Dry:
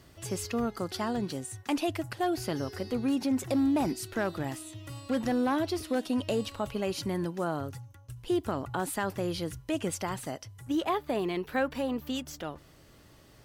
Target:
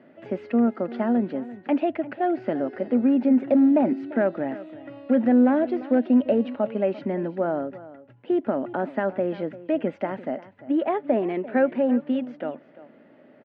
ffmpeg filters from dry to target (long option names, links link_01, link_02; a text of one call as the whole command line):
ffmpeg -i in.wav -af "highpass=frequency=190:width=0.5412,highpass=frequency=190:width=1.3066,equalizer=frequency=240:width_type=q:width=4:gain=9,equalizer=frequency=590:width_type=q:width=4:gain=9,equalizer=frequency=1100:width_type=q:width=4:gain=-9,lowpass=frequency=2200:width=0.5412,lowpass=frequency=2200:width=1.3066,aecho=1:1:345:0.141,volume=4dB" out.wav